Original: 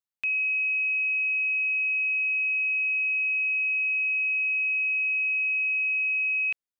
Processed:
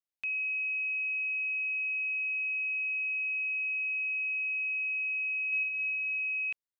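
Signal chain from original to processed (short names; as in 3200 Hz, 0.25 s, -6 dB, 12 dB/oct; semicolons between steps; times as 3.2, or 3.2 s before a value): 5.47–6.19 flutter echo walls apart 9.2 m, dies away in 1.4 s; gain -6.5 dB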